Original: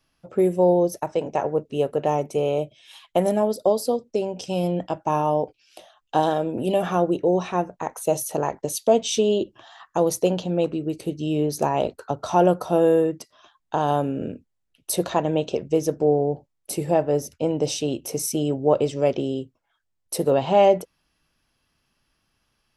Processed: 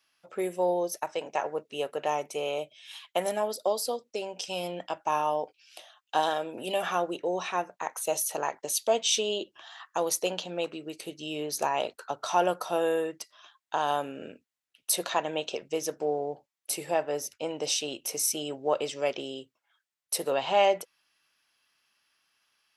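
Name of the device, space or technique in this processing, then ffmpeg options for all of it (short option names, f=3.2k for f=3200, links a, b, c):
filter by subtraction: -filter_complex "[0:a]asplit=2[a][b];[b]lowpass=2k,volume=-1[c];[a][c]amix=inputs=2:normalize=0"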